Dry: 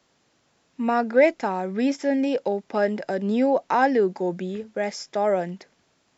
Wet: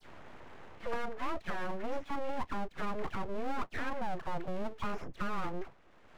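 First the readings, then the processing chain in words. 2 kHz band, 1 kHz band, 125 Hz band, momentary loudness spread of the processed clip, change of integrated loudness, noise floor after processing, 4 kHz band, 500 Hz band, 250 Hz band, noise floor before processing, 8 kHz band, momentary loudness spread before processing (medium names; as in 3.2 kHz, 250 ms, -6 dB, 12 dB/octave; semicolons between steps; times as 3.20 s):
-12.0 dB, -12.0 dB, -9.0 dB, 10 LU, -15.5 dB, -59 dBFS, -10.0 dB, -18.5 dB, -17.0 dB, -67 dBFS, no reading, 10 LU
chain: tracing distortion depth 0.11 ms; bass shelf 260 Hz +12 dB; reverse; compression, threshold -24 dBFS, peak gain reduction 15.5 dB; reverse; overdrive pedal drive 12 dB, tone 1.2 kHz, clips at -14.5 dBFS; boxcar filter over 10 samples; phase dispersion lows, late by 76 ms, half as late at 830 Hz; full-wave rectifier; three bands compressed up and down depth 70%; trim -6 dB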